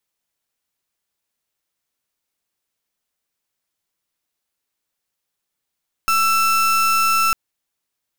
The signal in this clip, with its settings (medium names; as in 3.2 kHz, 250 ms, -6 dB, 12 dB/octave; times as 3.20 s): pulse 1.33 kHz, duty 35% -16.5 dBFS 1.25 s